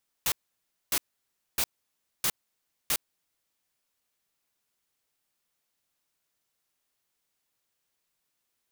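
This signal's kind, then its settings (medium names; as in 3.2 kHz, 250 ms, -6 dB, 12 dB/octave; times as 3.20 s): noise bursts white, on 0.06 s, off 0.60 s, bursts 5, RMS -26 dBFS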